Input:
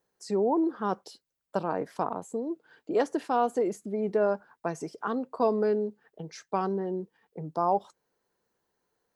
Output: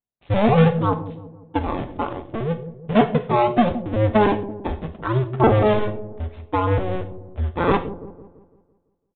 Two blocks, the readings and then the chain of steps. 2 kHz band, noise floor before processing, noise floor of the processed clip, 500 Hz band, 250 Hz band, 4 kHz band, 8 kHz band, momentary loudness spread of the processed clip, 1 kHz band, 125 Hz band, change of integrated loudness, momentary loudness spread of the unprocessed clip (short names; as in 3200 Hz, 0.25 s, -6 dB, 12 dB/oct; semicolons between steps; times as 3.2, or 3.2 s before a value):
+13.0 dB, -84 dBFS, -69 dBFS, +7.0 dB, +9.5 dB, +13.5 dB, under -30 dB, 15 LU, +8.0 dB, +21.0 dB, +8.5 dB, 11 LU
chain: cycle switcher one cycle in 2, inverted; spectral noise reduction 8 dB; gate with hold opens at -54 dBFS; low shelf 440 Hz +12 dB; in parallel at -8 dB: decimation with a swept rate 17×, swing 160% 0.69 Hz; on the sum: bell 330 Hz -6 dB 0.95 oct; on a send: dark delay 0.168 s, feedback 47%, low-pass 500 Hz, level -10 dB; on the sum: non-linear reverb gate 0.15 s falling, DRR 7 dB; downsampling 8000 Hz; gain +3.5 dB